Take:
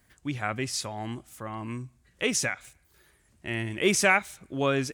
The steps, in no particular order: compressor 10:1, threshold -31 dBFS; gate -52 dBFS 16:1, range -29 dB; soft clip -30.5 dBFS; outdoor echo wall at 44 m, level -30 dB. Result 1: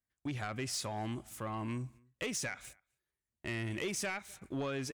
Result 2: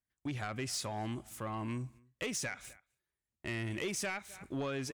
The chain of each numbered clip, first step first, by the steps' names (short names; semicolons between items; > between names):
compressor > gate > outdoor echo > soft clip; gate > outdoor echo > compressor > soft clip